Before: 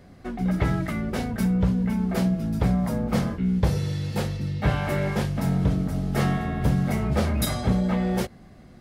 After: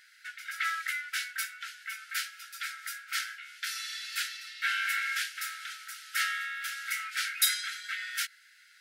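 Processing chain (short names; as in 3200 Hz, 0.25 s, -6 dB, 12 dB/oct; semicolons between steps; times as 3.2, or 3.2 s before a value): brick-wall FIR high-pass 1300 Hz; gain +5 dB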